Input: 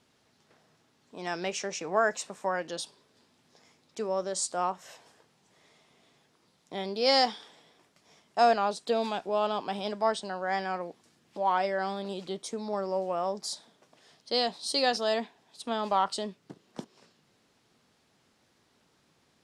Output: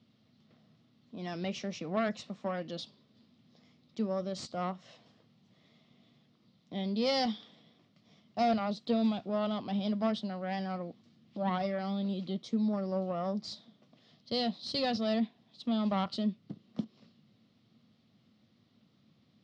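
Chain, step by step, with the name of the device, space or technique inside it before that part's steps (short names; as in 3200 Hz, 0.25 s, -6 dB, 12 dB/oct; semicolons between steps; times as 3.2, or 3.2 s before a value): guitar amplifier (tube stage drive 19 dB, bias 0.6; tone controls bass +9 dB, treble +7 dB; speaker cabinet 110–4000 Hz, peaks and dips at 110 Hz +5 dB, 220 Hz +8 dB, 410 Hz -6 dB, 900 Hz -10 dB, 1600 Hz -10 dB, 2500 Hz -4 dB)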